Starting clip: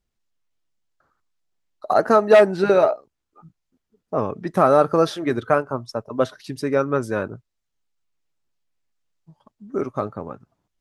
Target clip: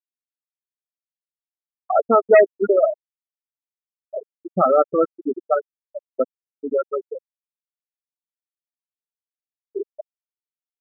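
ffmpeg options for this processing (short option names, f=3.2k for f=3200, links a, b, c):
-af "highshelf=f=3.1k:t=q:w=3:g=-8.5,afftfilt=real='re*gte(hypot(re,im),0.631)':imag='im*gte(hypot(re,im),0.631)':win_size=1024:overlap=0.75"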